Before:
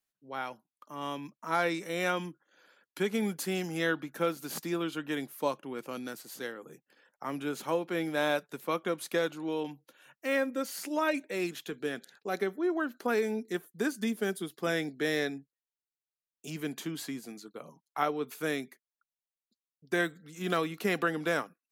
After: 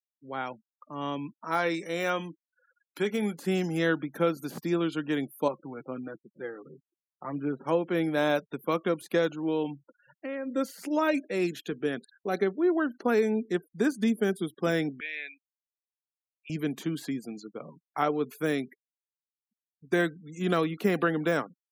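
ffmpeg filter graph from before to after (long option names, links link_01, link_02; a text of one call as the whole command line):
ffmpeg -i in.wav -filter_complex "[0:a]asettb=1/sr,asplit=3[link_01][link_02][link_03];[link_01]atrim=end=1.404[link_04];[link_02]atrim=start=1.4:end=3.43,asetpts=PTS-STARTPTS,afade=type=in:duration=0.004:curve=qsin,afade=type=out:start_time=2.026:duration=0.004:curve=qsin,lowshelf=frequency=290:gain=-8.5,asplit=2[link_05][link_06];[link_06]adelay=24,volume=-13.5dB[link_07];[link_05][link_07]amix=inputs=2:normalize=0,atrim=end_sample=89523[link_08];[link_03]atrim=start=3.426[link_09];[link_04][link_08]acrossfade=duration=0.004:curve1=hsin:curve2=qsin[link_10];[link_10][link_09]acrossfade=duration=0.004:curve1=qsin:curve2=hsin,asettb=1/sr,asplit=3[link_11][link_12][link_13];[link_11]atrim=end=5.484[link_14];[link_12]atrim=start=5.48:end=7.67,asetpts=PTS-STARTPTS,afade=type=in:duration=0.004:curve=qsin,afade=type=out:start_time=2.186:duration=0.004:curve=qsin,lowpass=1900,flanger=delay=4.9:depth=2.9:regen=14:speed=1.2:shape=triangular[link_15];[link_13]atrim=start=7.666[link_16];[link_14][link_15]acrossfade=duration=0.004:curve1=hsin:curve2=qsin[link_17];[link_17][link_16]acrossfade=duration=0.004:curve1=qsin:curve2=hsin,asettb=1/sr,asplit=3[link_18][link_19][link_20];[link_18]atrim=end=9.714[link_21];[link_19]atrim=start=9.71:end=10.53,asetpts=PTS-STARTPTS,afade=type=in:duration=0.004:curve=qsin,afade=type=out:start_time=0.816:duration=0.004:curve=qsin,aemphasis=mode=reproduction:type=75fm,acompressor=threshold=-36dB:ratio=5:attack=3.2:release=140:knee=1:detection=peak[link_22];[link_20]atrim=start=10.526[link_23];[link_21][link_22]acrossfade=duration=0.004:curve1=hsin:curve2=qsin[link_24];[link_24][link_23]acrossfade=duration=0.004:curve1=qsin:curve2=hsin,asettb=1/sr,asplit=3[link_25][link_26][link_27];[link_25]atrim=end=15.004[link_28];[link_26]atrim=start=15:end=16.5,asetpts=PTS-STARTPTS,afade=type=in:duration=0.004:curve=qsin,afade=type=out:start_time=1.496:duration=0.004:curve=qsin,bandpass=frequency=2400:width_type=q:width=8.5,acontrast=72[link_29];[link_27]atrim=start=16.496[link_30];[link_28][link_29]acrossfade=duration=0.004:curve1=hsin:curve2=qsin[link_31];[link_31][link_30]acrossfade=duration=0.004:curve1=qsin:curve2=hsin,lowshelf=frequency=490:gain=6.5,afftfilt=real='re*gte(hypot(re,im),0.00398)':imag='im*gte(hypot(re,im),0.00398)':win_size=1024:overlap=0.75,deesser=0.95,volume=1dB" out.wav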